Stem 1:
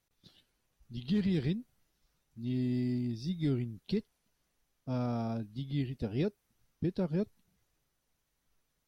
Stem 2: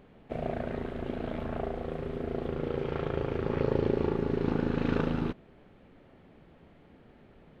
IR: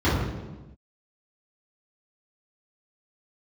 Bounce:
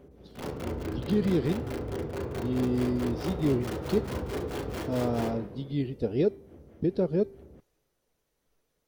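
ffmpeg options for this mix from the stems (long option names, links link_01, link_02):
-filter_complex "[0:a]bandreject=frequency=392.6:width_type=h:width=4,bandreject=frequency=785.2:width_type=h:width=4,bandreject=frequency=1177.8:width_type=h:width=4,bandreject=frequency=1570.4:width_type=h:width=4,bandreject=frequency=1963:width_type=h:width=4,bandreject=frequency=2355.6:width_type=h:width=4,bandreject=frequency=2748.2:width_type=h:width=4,bandreject=frequency=3140.8:width_type=h:width=4,bandreject=frequency=3533.4:width_type=h:width=4,bandreject=frequency=3926:width_type=h:width=4,bandreject=frequency=4318.6:width_type=h:width=4,bandreject=frequency=4711.2:width_type=h:width=4,bandreject=frequency=5103.8:width_type=h:width=4,bandreject=frequency=5496.4:width_type=h:width=4,bandreject=frequency=5889:width_type=h:width=4,bandreject=frequency=6281.6:width_type=h:width=4,bandreject=frequency=6674.2:width_type=h:width=4,bandreject=frequency=7066.8:width_type=h:width=4,bandreject=frequency=7459.4:width_type=h:width=4,bandreject=frequency=7852:width_type=h:width=4,bandreject=frequency=8244.6:width_type=h:width=4,bandreject=frequency=8637.2:width_type=h:width=4,bandreject=frequency=9029.8:width_type=h:width=4,bandreject=frequency=9422.4:width_type=h:width=4,bandreject=frequency=9815:width_type=h:width=4,bandreject=frequency=10207.6:width_type=h:width=4,bandreject=frequency=10600.2:width_type=h:width=4,bandreject=frequency=10992.8:width_type=h:width=4,bandreject=frequency=11385.4:width_type=h:width=4,bandreject=frequency=11778:width_type=h:width=4,bandreject=frequency=12170.6:width_type=h:width=4,bandreject=frequency=12563.2:width_type=h:width=4,bandreject=frequency=12955.8:width_type=h:width=4,bandreject=frequency=13348.4:width_type=h:width=4,bandreject=frequency=13741:width_type=h:width=4,bandreject=frequency=14133.6:width_type=h:width=4,volume=0.5dB[link_01];[1:a]aeval=exprs='(mod(33.5*val(0)+1,2)-1)/33.5':channel_layout=same,tremolo=f=4.6:d=0.98,volume=-6.5dB,asplit=2[link_02][link_03];[link_03]volume=-16.5dB[link_04];[2:a]atrim=start_sample=2205[link_05];[link_04][link_05]afir=irnorm=-1:irlink=0[link_06];[link_01][link_02][link_06]amix=inputs=3:normalize=0,equalizer=frequency=450:width=1.2:gain=11"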